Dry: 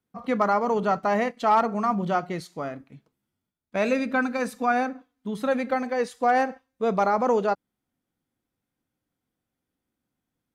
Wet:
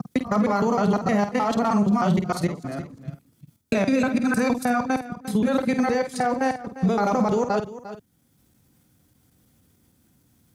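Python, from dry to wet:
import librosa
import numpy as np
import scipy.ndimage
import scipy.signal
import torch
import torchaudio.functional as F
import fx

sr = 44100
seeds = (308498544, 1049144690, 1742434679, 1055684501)

p1 = fx.local_reverse(x, sr, ms=155.0)
p2 = scipy.signal.sosfilt(scipy.signal.butter(2, 75.0, 'highpass', fs=sr, output='sos'), p1)
p3 = fx.low_shelf(p2, sr, hz=130.0, db=9.0)
p4 = fx.level_steps(p3, sr, step_db=14)
p5 = fx.bass_treble(p4, sr, bass_db=7, treble_db=9)
p6 = fx.doubler(p5, sr, ms=49.0, db=-9)
p7 = p6 + fx.echo_single(p6, sr, ms=350, db=-17.5, dry=0)
p8 = fx.band_squash(p7, sr, depth_pct=40)
y = p8 * 10.0 ** (5.0 / 20.0)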